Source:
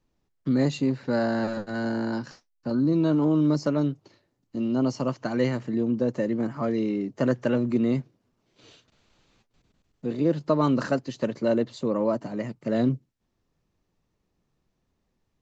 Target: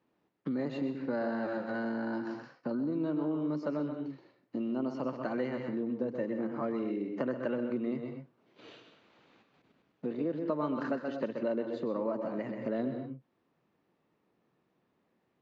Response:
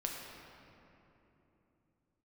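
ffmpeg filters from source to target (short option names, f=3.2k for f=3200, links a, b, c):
-filter_complex "[0:a]asplit=2[a][b];[1:a]atrim=start_sample=2205,afade=t=out:st=0.17:d=0.01,atrim=end_sample=7938,adelay=127[c];[b][c]afir=irnorm=-1:irlink=0,volume=-6.5dB[d];[a][d]amix=inputs=2:normalize=0,acompressor=threshold=-37dB:ratio=3,highpass=220,lowpass=2.6k,volume=4dB"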